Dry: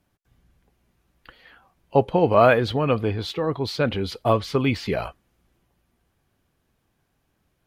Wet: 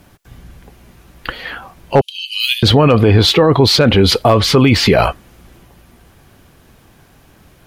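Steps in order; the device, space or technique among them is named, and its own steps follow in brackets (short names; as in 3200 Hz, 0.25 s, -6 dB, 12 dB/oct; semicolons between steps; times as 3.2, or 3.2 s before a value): 2.01–2.63 Chebyshev high-pass 2900 Hz, order 5; loud club master (compressor 1.5:1, threshold -30 dBFS, peak gain reduction 7 dB; hard clip -15.5 dBFS, distortion -23 dB; maximiser +24.5 dB); gain -1 dB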